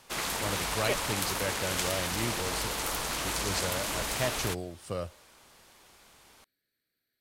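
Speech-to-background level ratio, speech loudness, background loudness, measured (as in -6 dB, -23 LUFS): -4.5 dB, -36.0 LUFS, -31.5 LUFS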